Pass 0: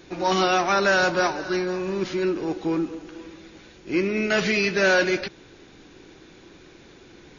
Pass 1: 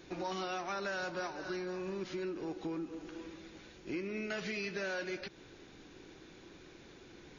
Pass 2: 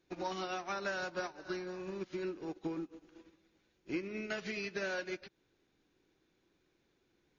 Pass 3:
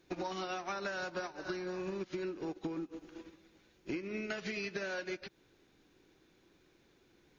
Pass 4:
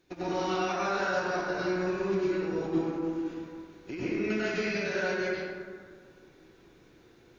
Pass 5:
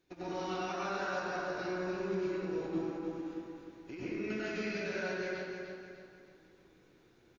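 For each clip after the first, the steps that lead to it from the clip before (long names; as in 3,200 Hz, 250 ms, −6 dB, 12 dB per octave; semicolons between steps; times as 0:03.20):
downward compressor 4 to 1, threshold −31 dBFS, peak gain reduction 13 dB; level −6.5 dB
expander for the loud parts 2.5 to 1, over −51 dBFS; level +3 dB
downward compressor 6 to 1, threshold −44 dBFS, peak gain reduction 11.5 dB; level +8 dB
dense smooth reverb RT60 1.9 s, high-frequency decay 0.4×, pre-delay 85 ms, DRR −10 dB; level −1.5 dB
repeating echo 302 ms, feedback 39%, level −7 dB; level −7.5 dB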